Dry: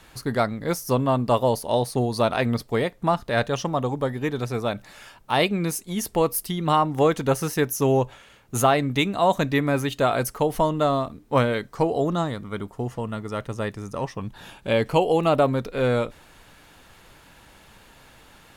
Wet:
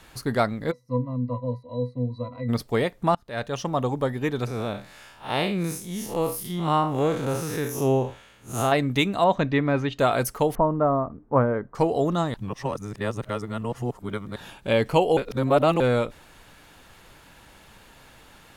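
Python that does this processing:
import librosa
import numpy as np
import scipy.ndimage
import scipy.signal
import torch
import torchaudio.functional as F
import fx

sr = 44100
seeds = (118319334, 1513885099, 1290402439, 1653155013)

y = fx.octave_resonator(x, sr, note='B', decay_s=0.16, at=(0.7, 2.48), fade=0.02)
y = fx.spec_blur(y, sr, span_ms=130.0, at=(4.47, 8.72))
y = fx.air_absorb(y, sr, metres=170.0, at=(9.24, 9.99))
y = fx.lowpass(y, sr, hz=1400.0, slope=24, at=(10.55, 11.75))
y = fx.edit(y, sr, fx.fade_in_from(start_s=3.15, length_s=0.65, floor_db=-23.5),
    fx.reverse_span(start_s=12.34, length_s=2.02),
    fx.reverse_span(start_s=15.17, length_s=0.63), tone=tone)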